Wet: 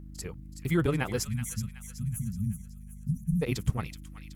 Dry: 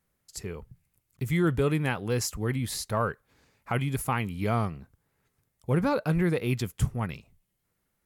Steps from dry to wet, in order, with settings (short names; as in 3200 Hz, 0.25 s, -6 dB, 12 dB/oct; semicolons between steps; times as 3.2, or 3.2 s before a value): hum 60 Hz, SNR 13 dB; granular stretch 0.54×, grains 66 ms; spectral delete 1.25–3.42, 250–5700 Hz; thin delay 0.375 s, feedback 44%, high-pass 1700 Hz, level -9 dB